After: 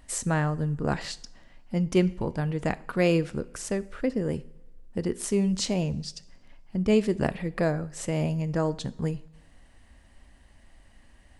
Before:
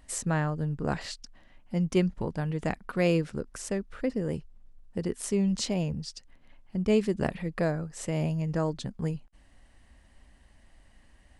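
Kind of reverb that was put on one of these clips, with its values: two-slope reverb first 0.58 s, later 1.7 s, from -16 dB, DRR 15 dB; gain +2.5 dB

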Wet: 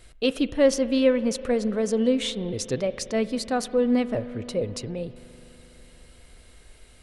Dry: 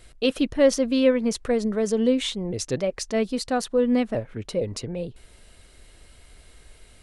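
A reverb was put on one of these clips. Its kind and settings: spring tank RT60 4 s, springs 41 ms, chirp 65 ms, DRR 14 dB; gain -1 dB

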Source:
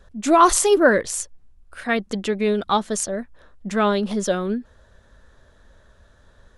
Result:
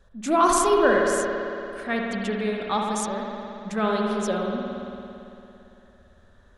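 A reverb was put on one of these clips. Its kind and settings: spring tank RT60 2.9 s, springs 56 ms, chirp 30 ms, DRR -1 dB; gain -6.5 dB

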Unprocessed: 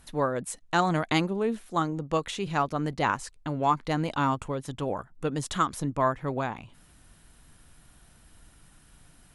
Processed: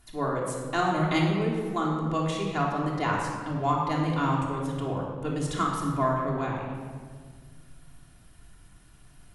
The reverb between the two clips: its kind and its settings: shoebox room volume 2300 m³, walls mixed, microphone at 3.2 m; gain -5.5 dB

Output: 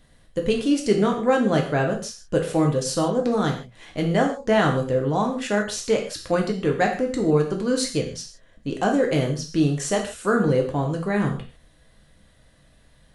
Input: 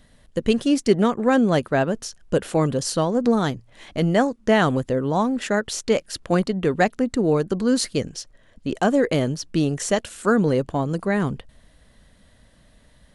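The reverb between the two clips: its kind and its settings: non-linear reverb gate 0.18 s falling, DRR 0.5 dB; gain -3.5 dB

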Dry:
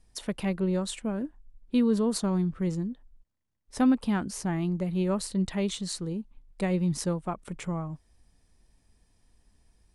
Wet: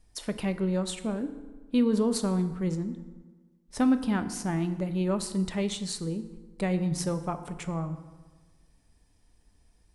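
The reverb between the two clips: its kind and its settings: FDN reverb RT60 1.4 s, low-frequency decay 1.05×, high-frequency decay 0.6×, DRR 9 dB

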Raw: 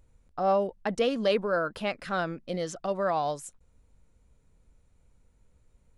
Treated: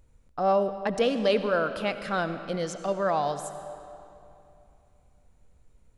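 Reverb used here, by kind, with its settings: digital reverb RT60 2.8 s, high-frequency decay 0.8×, pre-delay 40 ms, DRR 10 dB; gain +1.5 dB

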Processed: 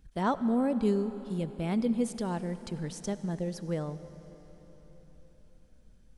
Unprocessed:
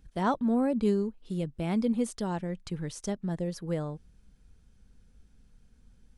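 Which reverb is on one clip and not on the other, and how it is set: digital reverb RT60 4.3 s, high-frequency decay 0.95×, pre-delay 35 ms, DRR 12.5 dB; gain -1 dB

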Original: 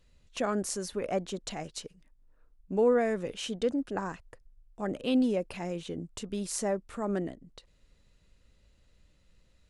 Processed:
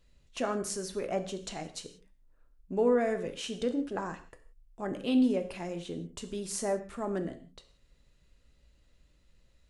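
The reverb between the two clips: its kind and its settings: non-linear reverb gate 0.2 s falling, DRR 7 dB; gain -2 dB

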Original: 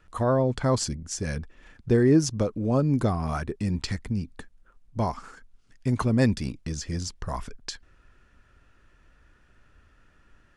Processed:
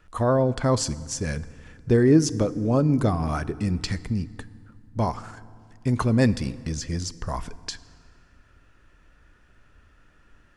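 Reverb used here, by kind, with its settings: FDN reverb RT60 2.1 s, low-frequency decay 1.35×, high-frequency decay 0.7×, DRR 16 dB; gain +2 dB

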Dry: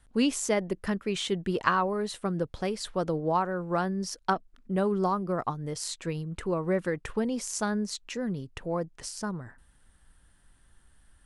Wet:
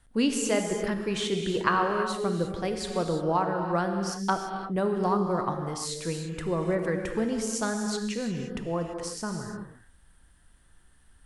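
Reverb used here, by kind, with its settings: non-linear reverb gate 0.37 s flat, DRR 3.5 dB

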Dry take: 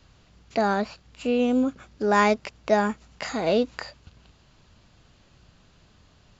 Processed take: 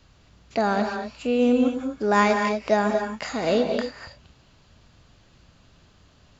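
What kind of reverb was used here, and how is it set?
non-linear reverb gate 0.27 s rising, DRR 4.5 dB

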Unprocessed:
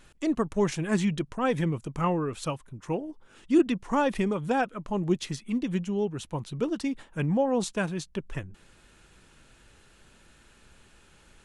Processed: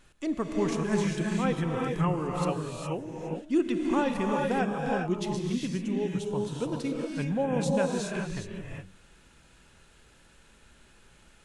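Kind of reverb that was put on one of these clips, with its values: non-linear reverb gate 0.44 s rising, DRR -0.5 dB; gain -4 dB

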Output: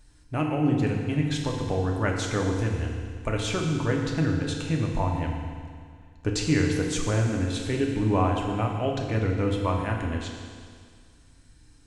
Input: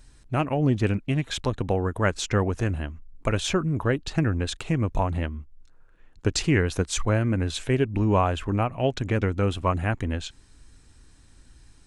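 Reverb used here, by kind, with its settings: FDN reverb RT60 2 s, low-frequency decay 1.05×, high-frequency decay 1×, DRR 0 dB; gain -5 dB

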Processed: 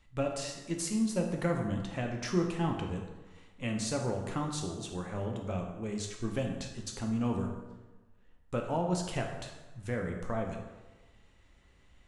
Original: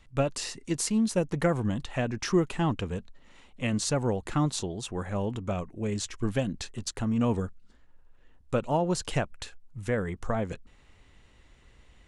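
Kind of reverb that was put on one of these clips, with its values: plate-style reverb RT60 1.2 s, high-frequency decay 0.65×, DRR 1.5 dB; gain -7 dB

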